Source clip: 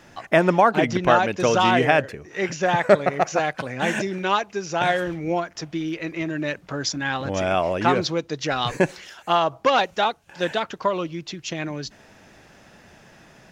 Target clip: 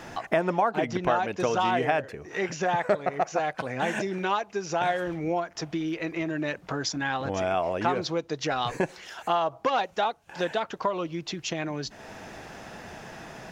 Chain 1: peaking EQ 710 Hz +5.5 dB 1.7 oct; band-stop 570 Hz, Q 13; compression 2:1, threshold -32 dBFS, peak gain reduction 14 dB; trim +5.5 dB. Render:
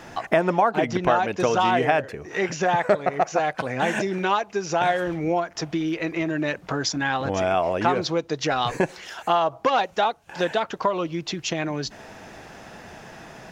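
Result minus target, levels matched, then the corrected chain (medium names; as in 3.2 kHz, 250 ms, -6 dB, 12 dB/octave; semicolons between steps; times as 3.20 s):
compression: peak gain reduction -4.5 dB
peaking EQ 710 Hz +5.5 dB 1.7 oct; band-stop 570 Hz, Q 13; compression 2:1, threshold -41 dBFS, peak gain reduction 18.5 dB; trim +5.5 dB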